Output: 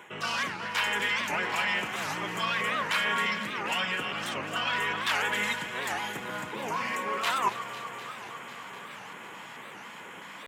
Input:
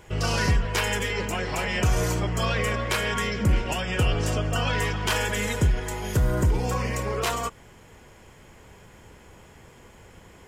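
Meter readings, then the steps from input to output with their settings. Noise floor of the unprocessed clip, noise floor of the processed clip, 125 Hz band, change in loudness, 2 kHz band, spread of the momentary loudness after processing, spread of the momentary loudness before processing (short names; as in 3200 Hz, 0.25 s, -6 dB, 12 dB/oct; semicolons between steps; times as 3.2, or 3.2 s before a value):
-51 dBFS, -45 dBFS, -21.0 dB, -4.0 dB, +1.0 dB, 16 LU, 4 LU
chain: in parallel at -8.5 dB: wavefolder -21.5 dBFS; on the sum: LFO notch square 2.3 Hz 400–4700 Hz; reverse; compressor 6:1, threshold -32 dBFS, peak gain reduction 14 dB; reverse; HPF 180 Hz 24 dB/oct; band shelf 1900 Hz +8.5 dB 2.5 oct; echo with dull and thin repeats by turns 0.125 s, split 1600 Hz, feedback 88%, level -11 dB; record warp 78 rpm, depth 250 cents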